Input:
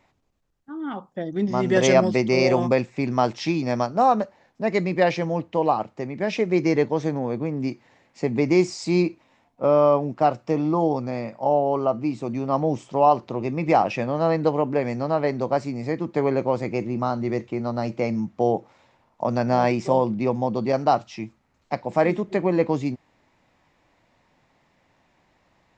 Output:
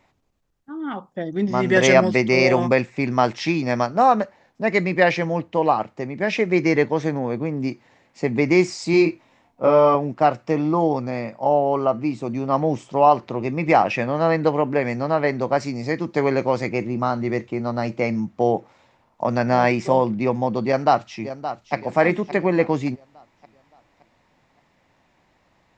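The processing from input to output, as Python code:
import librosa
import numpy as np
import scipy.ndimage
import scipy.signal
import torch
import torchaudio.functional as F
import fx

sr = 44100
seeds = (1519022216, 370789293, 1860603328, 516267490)

y = fx.doubler(x, sr, ms=25.0, db=-3.5, at=(8.91, 9.95))
y = fx.peak_eq(y, sr, hz=5400.0, db=8.0, octaves=1.0, at=(15.6, 16.69))
y = fx.echo_throw(y, sr, start_s=20.67, length_s=1.07, ms=570, feedback_pct=45, wet_db=-11.0)
y = fx.dynamic_eq(y, sr, hz=1900.0, q=1.3, threshold_db=-41.0, ratio=4.0, max_db=7)
y = y * librosa.db_to_amplitude(1.5)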